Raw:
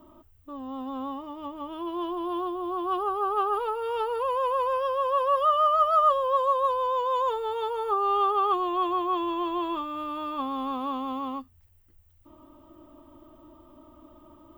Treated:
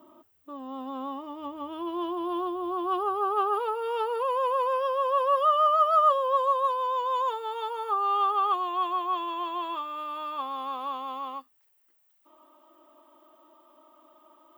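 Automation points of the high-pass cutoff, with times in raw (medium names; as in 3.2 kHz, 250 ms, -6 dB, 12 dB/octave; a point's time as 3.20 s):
1.09 s 260 Hz
1.57 s 100 Hz
3.30 s 100 Hz
3.81 s 260 Hz
5.94 s 260 Hz
6.73 s 620 Hz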